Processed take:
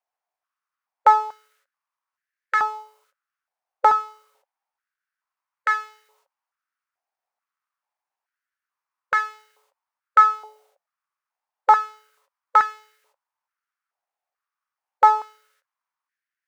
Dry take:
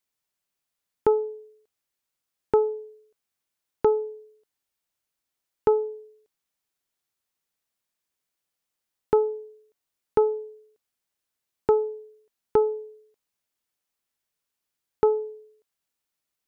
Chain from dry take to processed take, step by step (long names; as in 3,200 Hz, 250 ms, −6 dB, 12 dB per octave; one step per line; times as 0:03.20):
running median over 15 samples
formants moved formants +4 semitones
high-pass on a step sequencer 2.3 Hz 740–1,700 Hz